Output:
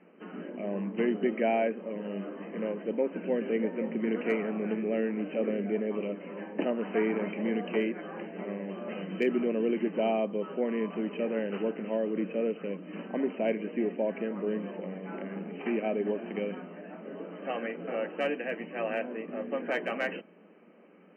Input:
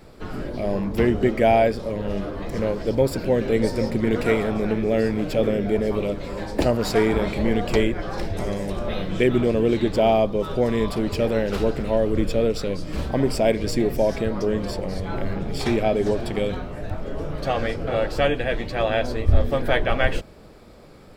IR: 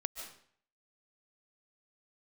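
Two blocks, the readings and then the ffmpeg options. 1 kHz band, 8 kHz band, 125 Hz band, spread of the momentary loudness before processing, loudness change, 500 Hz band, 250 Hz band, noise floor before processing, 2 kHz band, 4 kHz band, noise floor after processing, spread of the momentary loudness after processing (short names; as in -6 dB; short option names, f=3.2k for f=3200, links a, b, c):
-11.0 dB, under -30 dB, -17.5 dB, 9 LU, -9.0 dB, -9.0 dB, -7.5 dB, -45 dBFS, -8.5 dB, -15.0 dB, -56 dBFS, 10 LU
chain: -filter_complex "[0:a]equalizer=f=860:t=o:w=1.4:g=-4.5,bandreject=f=1.4k:w=24,afftfilt=real='re*between(b*sr/4096,170,3100)':imag='im*between(b*sr/4096,170,3100)':win_size=4096:overlap=0.75,acrossover=split=370|840|1800[a][b][c][d];[d]aeval=exprs='clip(val(0),-1,0.0596)':c=same[e];[a][b][c][e]amix=inputs=4:normalize=0,volume=-7dB"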